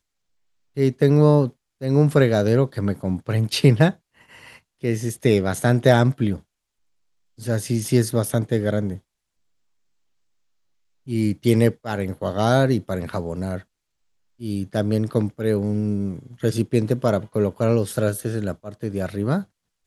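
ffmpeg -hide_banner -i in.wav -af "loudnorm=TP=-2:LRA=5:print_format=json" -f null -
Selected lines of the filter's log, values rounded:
"input_i" : "-21.8",
"input_tp" : "-1.2",
"input_lra" : "5.6",
"input_thresh" : "-32.3",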